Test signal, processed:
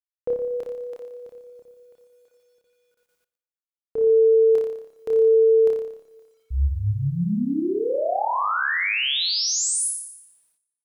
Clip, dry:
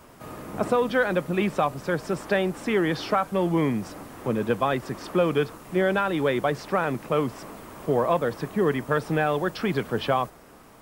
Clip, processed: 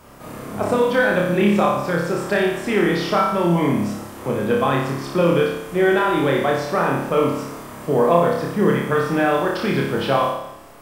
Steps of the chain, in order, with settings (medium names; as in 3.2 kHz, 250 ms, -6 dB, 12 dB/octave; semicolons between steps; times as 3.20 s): flutter echo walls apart 5 m, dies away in 0.79 s; word length cut 12-bit, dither none; Schroeder reverb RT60 0.91 s, combs from 31 ms, DRR 15.5 dB; trim +2 dB